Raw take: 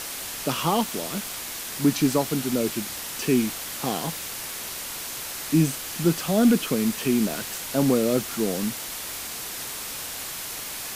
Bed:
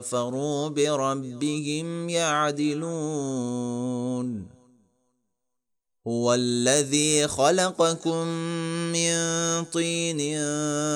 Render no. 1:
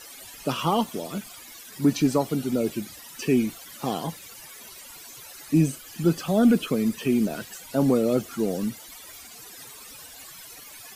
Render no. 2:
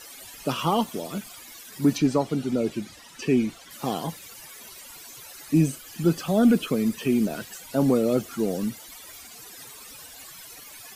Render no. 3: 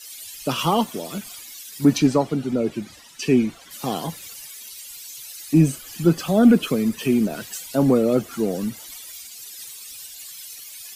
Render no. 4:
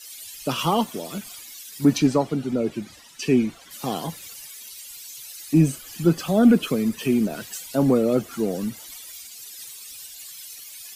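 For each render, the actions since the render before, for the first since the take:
broadband denoise 16 dB, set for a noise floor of −34 dBFS
0:01.98–0:03.71: high-frequency loss of the air 50 metres
in parallel at +1 dB: downward compressor, threshold −30 dBFS, peak gain reduction 15 dB; on the sum: multiband upward and downward expander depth 70%
level −1.5 dB

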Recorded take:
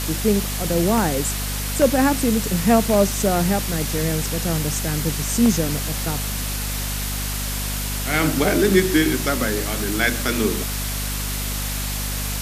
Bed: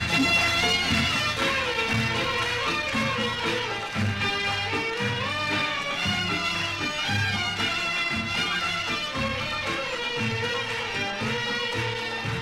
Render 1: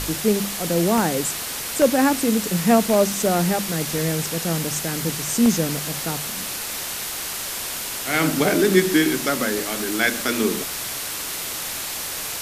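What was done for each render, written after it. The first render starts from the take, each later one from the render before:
hum removal 50 Hz, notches 5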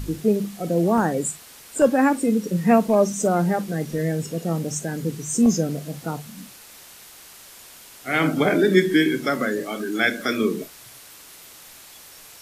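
noise reduction from a noise print 16 dB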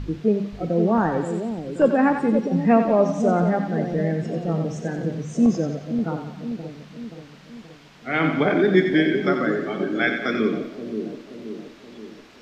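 high-frequency loss of the air 210 metres
echo with a time of its own for lows and highs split 620 Hz, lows 527 ms, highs 90 ms, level −7 dB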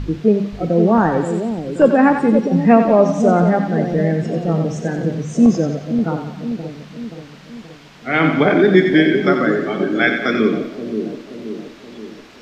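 level +6 dB
brickwall limiter −1 dBFS, peak gain reduction 1.5 dB

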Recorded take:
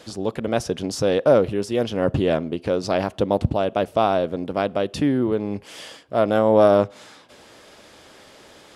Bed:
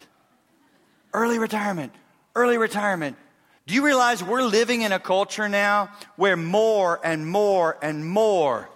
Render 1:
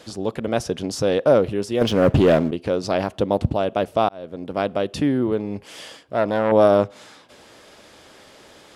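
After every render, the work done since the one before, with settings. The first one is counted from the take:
0:01.81–0:02.51: leveller curve on the samples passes 2
0:04.09–0:04.62: fade in linear
0:05.41–0:06.52: saturating transformer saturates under 850 Hz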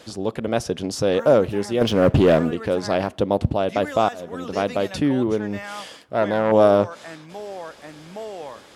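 mix in bed −14.5 dB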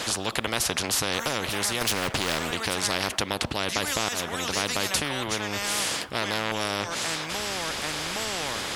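downward compressor, threshold −17 dBFS, peak gain reduction 7.5 dB
every bin compressed towards the loudest bin 4 to 1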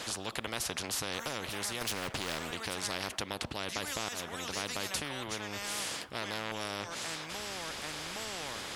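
level −9.5 dB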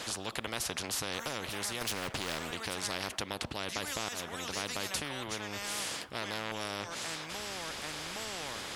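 no processing that can be heard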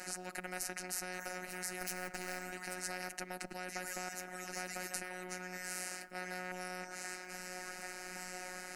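phaser with its sweep stopped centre 690 Hz, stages 8
phases set to zero 182 Hz

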